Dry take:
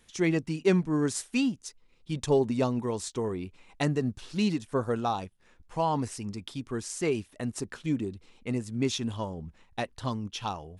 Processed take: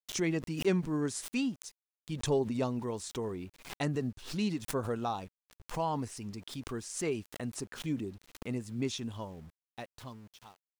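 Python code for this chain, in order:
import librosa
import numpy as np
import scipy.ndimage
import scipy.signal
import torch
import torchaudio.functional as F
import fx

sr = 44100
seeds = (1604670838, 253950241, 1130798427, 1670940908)

y = fx.fade_out_tail(x, sr, length_s=2.04)
y = np.where(np.abs(y) >= 10.0 ** (-50.5 / 20.0), y, 0.0)
y = fx.pre_swell(y, sr, db_per_s=110.0)
y = y * 10.0 ** (-5.5 / 20.0)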